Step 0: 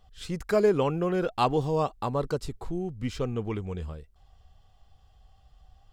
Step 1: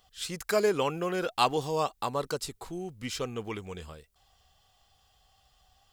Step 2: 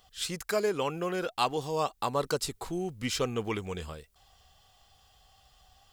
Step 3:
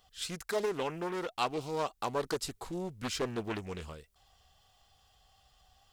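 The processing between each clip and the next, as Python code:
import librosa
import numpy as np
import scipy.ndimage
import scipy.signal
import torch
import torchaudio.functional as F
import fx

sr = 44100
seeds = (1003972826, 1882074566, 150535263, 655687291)

y1 = fx.tilt_eq(x, sr, slope=3.0)
y2 = fx.rider(y1, sr, range_db=4, speed_s=0.5)
y3 = fx.doppler_dist(y2, sr, depth_ms=0.65)
y3 = F.gain(torch.from_numpy(y3), -4.0).numpy()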